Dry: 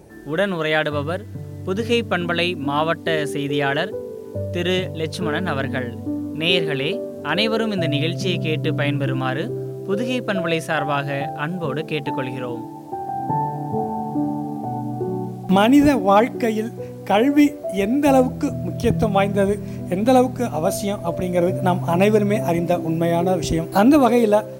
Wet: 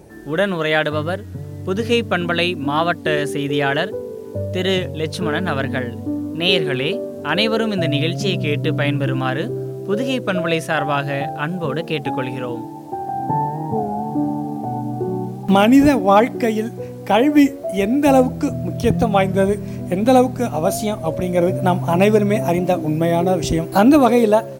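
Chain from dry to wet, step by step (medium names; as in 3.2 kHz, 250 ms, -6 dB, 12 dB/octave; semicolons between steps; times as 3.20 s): warped record 33 1/3 rpm, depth 100 cents; trim +2 dB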